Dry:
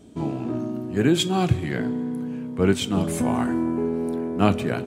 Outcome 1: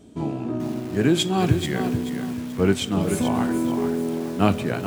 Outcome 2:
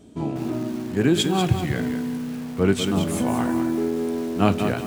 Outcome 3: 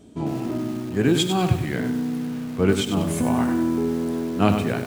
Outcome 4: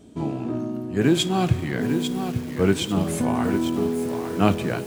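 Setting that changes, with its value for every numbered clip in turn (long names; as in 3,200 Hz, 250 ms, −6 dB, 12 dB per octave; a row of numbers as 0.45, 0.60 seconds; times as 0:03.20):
feedback echo at a low word length, delay time: 434, 192, 97, 848 milliseconds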